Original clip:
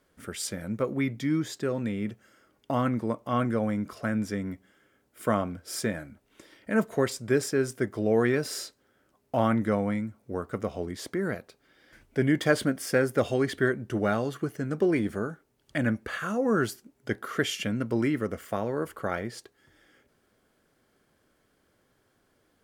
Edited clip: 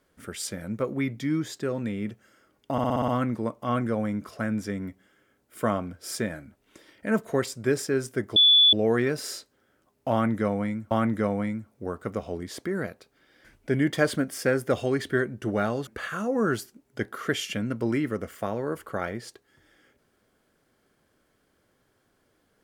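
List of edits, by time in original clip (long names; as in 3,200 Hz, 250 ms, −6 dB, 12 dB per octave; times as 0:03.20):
0:02.72: stutter 0.06 s, 7 plays
0:08.00: insert tone 3,450 Hz −13.5 dBFS 0.37 s
0:09.39–0:10.18: repeat, 2 plays
0:14.35–0:15.97: remove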